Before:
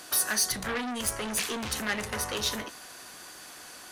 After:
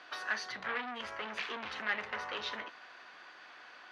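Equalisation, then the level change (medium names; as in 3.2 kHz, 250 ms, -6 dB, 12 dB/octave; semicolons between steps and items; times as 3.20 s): band-pass filter 1.9 kHz, Q 0.63; distance through air 250 m; 0.0 dB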